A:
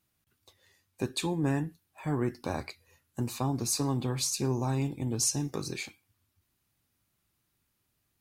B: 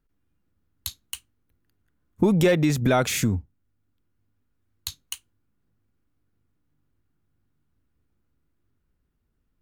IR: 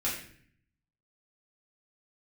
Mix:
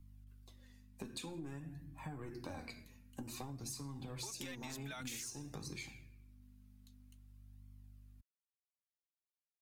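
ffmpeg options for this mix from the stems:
-filter_complex "[0:a]aeval=exprs='val(0)+0.00224*(sin(2*PI*50*n/s)+sin(2*PI*2*50*n/s)/2+sin(2*PI*3*50*n/s)/3+sin(2*PI*4*50*n/s)/4+sin(2*PI*5*50*n/s)/5)':channel_layout=same,asoftclip=type=tanh:threshold=-21dB,volume=-3.5dB,asplit=3[link_01][link_02][link_03];[link_02]volume=-11dB[link_04];[1:a]highpass=1200,adelay=2000,volume=-3dB[link_05];[link_03]apad=whole_len=512299[link_06];[link_05][link_06]sidechaingate=range=-30dB:threshold=-50dB:ratio=16:detection=peak[link_07];[2:a]atrim=start_sample=2205[link_08];[link_04][link_08]afir=irnorm=-1:irlink=0[link_09];[link_01][link_07][link_09]amix=inputs=3:normalize=0,acrossover=split=180|3000[link_10][link_11][link_12];[link_11]acompressor=threshold=-34dB:ratio=6[link_13];[link_10][link_13][link_12]amix=inputs=3:normalize=0,flanger=delay=0.9:depth=3.8:regen=38:speed=0.52:shape=sinusoidal,acompressor=threshold=-42dB:ratio=12"

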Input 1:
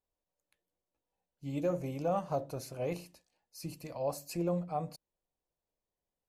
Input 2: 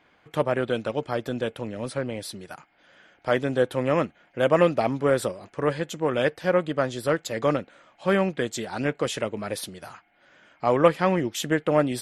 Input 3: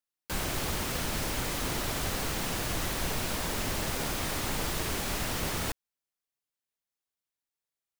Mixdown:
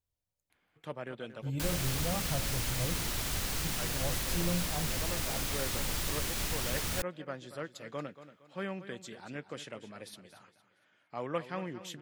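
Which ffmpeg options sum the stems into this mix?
ffmpeg -i stem1.wav -i stem2.wav -i stem3.wav -filter_complex "[0:a]equalizer=frequency=99:width=1.3:gain=15,volume=0.5dB,asplit=2[link_01][link_02];[1:a]highpass=130,highshelf=frequency=5600:gain=-9.5,adelay=500,volume=-9.5dB,asplit=2[link_03][link_04];[link_04]volume=-13.5dB[link_05];[2:a]adelay=1300,volume=0dB[link_06];[link_02]apad=whole_len=552063[link_07];[link_03][link_07]sidechaincompress=threshold=-35dB:ratio=8:attack=16:release=1290[link_08];[link_05]aecho=0:1:231|462|693|924|1155:1|0.35|0.122|0.0429|0.015[link_09];[link_01][link_08][link_06][link_09]amix=inputs=4:normalize=0,equalizer=frequency=530:width=0.34:gain=-8" out.wav

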